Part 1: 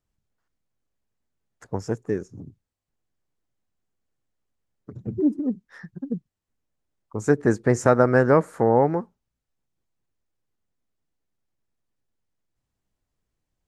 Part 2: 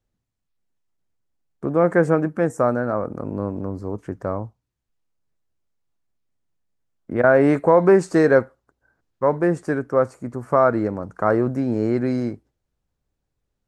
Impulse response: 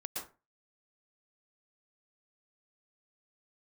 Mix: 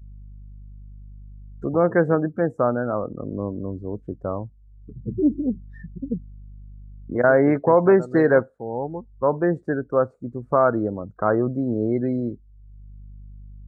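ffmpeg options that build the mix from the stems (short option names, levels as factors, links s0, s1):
-filter_complex "[0:a]deesser=0.75,aeval=exprs='val(0)+0.01*(sin(2*PI*50*n/s)+sin(2*PI*2*50*n/s)/2+sin(2*PI*3*50*n/s)/3+sin(2*PI*4*50*n/s)/4+sin(2*PI*5*50*n/s)/5)':c=same,volume=1.19[s0];[1:a]volume=0.841,asplit=2[s1][s2];[s2]apad=whole_len=603045[s3];[s0][s3]sidechaincompress=threshold=0.0398:ratio=16:attack=16:release=972[s4];[s4][s1]amix=inputs=2:normalize=0,afftdn=nr=28:nf=-31,equalizer=f=3800:w=3.7:g=10"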